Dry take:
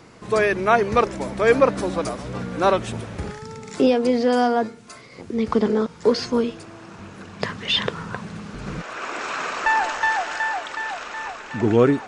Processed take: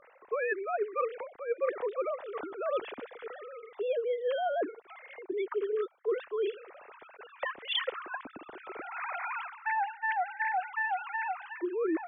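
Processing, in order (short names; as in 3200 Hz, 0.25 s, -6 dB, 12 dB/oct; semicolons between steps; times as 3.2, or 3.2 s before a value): sine-wave speech; reverse; compressor 16:1, threshold -28 dBFS, peak gain reduction 22.5 dB; reverse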